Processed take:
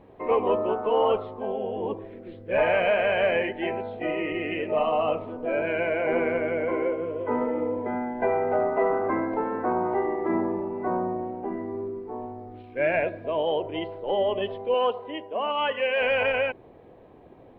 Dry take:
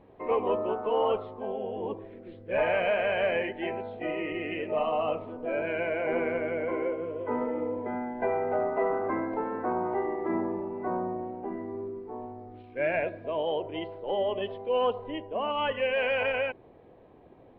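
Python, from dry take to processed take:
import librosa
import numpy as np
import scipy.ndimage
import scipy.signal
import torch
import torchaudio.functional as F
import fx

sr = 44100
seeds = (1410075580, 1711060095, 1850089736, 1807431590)

y = fx.highpass(x, sr, hz=400.0, slope=6, at=(14.74, 16.01))
y = F.gain(torch.from_numpy(y), 4.0).numpy()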